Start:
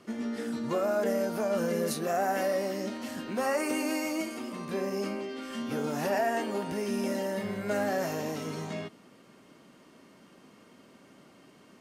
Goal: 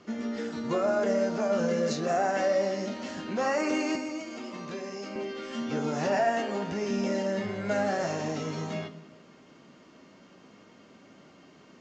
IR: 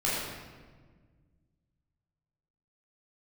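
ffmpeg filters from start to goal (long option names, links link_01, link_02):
-filter_complex "[0:a]asettb=1/sr,asplit=3[link_01][link_02][link_03];[link_01]atrim=end=3.954[link_04];[link_02]atrim=start=3.95:end=5.16,asetpts=PTS-STARTPTS,afade=type=in:duration=0.004:curve=qsin,afade=type=out:start_time=1.206:duration=0.004:curve=qsin,acrossover=split=270|2000[link_05][link_06][link_07];[link_05]acompressor=threshold=-46dB:ratio=4[link_08];[link_06]acompressor=threshold=-40dB:ratio=4[link_09];[link_07]acompressor=threshold=-46dB:ratio=4[link_10];[link_08][link_09][link_10]amix=inputs=3:normalize=0[link_11];[link_03]atrim=start=5.156[link_12];[link_04][link_11]acrossfade=duration=0.004:curve1=hsin:curve2=qsin[link_13];[link_13][link_12]acrossfade=duration=0.004:curve1=qsin:curve2=hsin,flanger=delay=9.8:depth=3.7:regen=-60:speed=0.28:shape=triangular,asplit=2[link_14][link_15];[1:a]atrim=start_sample=2205,afade=type=out:start_time=0.44:duration=0.01,atrim=end_sample=19845[link_16];[link_15][link_16]afir=irnorm=-1:irlink=0,volume=-21dB[link_17];[link_14][link_17]amix=inputs=2:normalize=0,aresample=16000,aresample=44100,volume=5dB"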